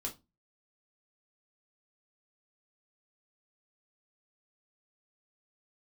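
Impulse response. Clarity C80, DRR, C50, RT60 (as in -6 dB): 24.0 dB, -1.0 dB, 14.5 dB, 0.25 s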